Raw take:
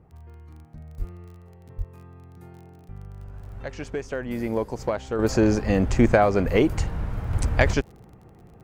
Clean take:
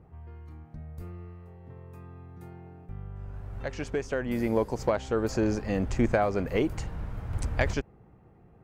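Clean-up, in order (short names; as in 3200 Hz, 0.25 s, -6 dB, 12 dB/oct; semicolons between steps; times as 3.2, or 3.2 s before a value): de-click; de-plosive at 0.98/1.77/5.66/6.45/6.77; gain correction -7 dB, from 5.19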